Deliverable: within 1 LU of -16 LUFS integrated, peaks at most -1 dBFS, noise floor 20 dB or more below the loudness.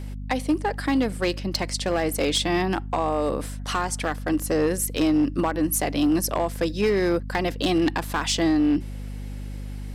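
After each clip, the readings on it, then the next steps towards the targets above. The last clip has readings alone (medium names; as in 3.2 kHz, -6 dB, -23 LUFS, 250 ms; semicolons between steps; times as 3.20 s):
clipped samples 1.4%; clipping level -15.5 dBFS; hum 50 Hz; highest harmonic 250 Hz; hum level -31 dBFS; loudness -24.0 LUFS; peak level -15.5 dBFS; loudness target -16.0 LUFS
-> clip repair -15.5 dBFS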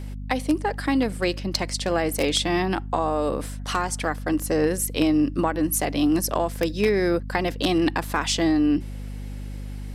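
clipped samples 0.0%; hum 50 Hz; highest harmonic 250 Hz; hum level -31 dBFS
-> hum notches 50/100/150/200/250 Hz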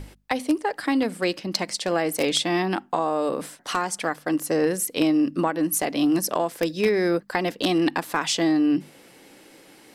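hum not found; loudness -24.0 LUFS; peak level -6.5 dBFS; loudness target -16.0 LUFS
-> trim +8 dB; peak limiter -1 dBFS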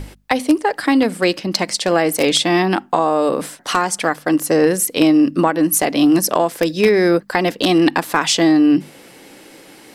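loudness -16.0 LUFS; peak level -1.0 dBFS; noise floor -44 dBFS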